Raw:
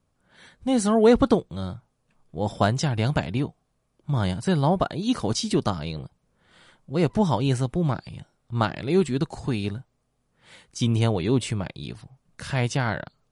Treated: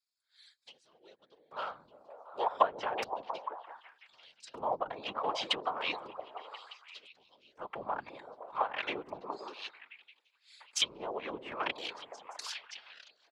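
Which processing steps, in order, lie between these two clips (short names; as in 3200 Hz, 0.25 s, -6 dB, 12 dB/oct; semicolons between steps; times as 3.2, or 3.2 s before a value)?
Wiener smoothing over 15 samples; notches 50/100/150 Hz; treble ducked by the level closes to 420 Hz, closed at -18.5 dBFS; bell 2800 Hz +10.5 dB 0.84 oct; small resonant body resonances 510/3200 Hz, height 8 dB; LFO high-pass square 0.33 Hz 970–4900 Hz; comb 6.8 ms, depth 42%; delay with a stepping band-pass 0.172 s, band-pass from 190 Hz, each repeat 0.7 oct, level -1 dB; whisperiser; tilt +2 dB/oct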